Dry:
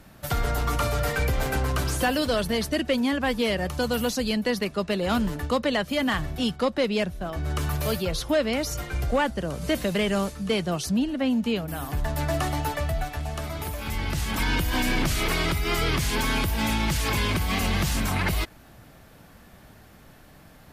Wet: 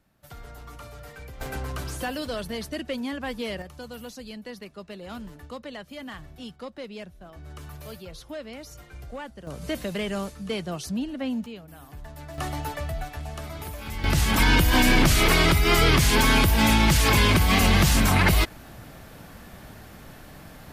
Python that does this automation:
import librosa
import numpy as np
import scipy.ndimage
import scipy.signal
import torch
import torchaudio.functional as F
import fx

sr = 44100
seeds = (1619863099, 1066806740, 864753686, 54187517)

y = fx.gain(x, sr, db=fx.steps((0.0, -17.5), (1.41, -7.0), (3.62, -14.0), (9.47, -5.0), (11.46, -14.0), (12.38, -4.0), (14.04, 6.0)))